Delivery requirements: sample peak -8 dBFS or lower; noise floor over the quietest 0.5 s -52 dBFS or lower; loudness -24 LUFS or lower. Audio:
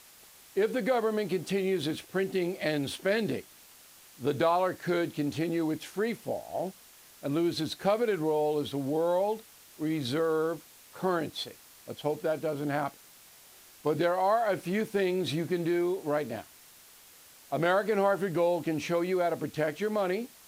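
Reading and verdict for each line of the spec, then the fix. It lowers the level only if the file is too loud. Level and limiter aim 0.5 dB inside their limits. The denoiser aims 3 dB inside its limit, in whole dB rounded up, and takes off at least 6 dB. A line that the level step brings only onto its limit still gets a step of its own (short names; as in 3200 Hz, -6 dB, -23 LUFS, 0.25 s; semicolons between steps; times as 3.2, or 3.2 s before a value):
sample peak -14.0 dBFS: OK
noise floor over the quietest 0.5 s -55 dBFS: OK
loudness -30.0 LUFS: OK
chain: none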